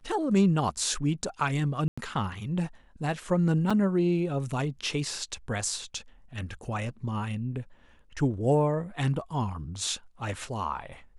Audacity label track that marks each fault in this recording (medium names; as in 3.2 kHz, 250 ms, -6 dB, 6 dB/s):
1.880000	1.980000	dropout 95 ms
3.700000	3.710000	dropout 5.3 ms